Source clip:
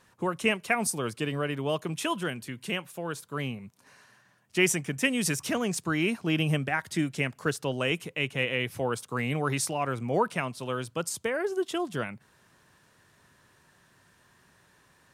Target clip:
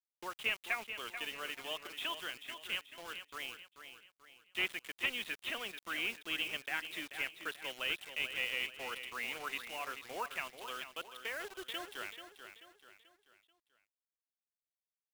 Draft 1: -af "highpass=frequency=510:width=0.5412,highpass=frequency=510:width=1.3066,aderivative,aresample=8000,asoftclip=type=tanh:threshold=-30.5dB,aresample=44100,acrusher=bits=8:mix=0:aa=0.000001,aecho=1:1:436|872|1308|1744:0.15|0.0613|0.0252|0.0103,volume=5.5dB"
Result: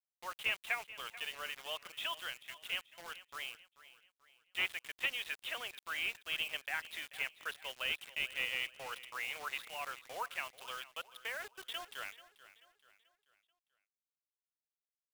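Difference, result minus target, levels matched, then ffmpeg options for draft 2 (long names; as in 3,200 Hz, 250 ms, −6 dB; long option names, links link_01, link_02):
250 Hz band −10.5 dB; echo-to-direct −7 dB
-af "highpass=frequency=200:width=0.5412,highpass=frequency=200:width=1.3066,aderivative,aresample=8000,asoftclip=type=tanh:threshold=-30.5dB,aresample=44100,acrusher=bits=8:mix=0:aa=0.000001,aecho=1:1:436|872|1308|1744:0.335|0.137|0.0563|0.0231,volume=5.5dB"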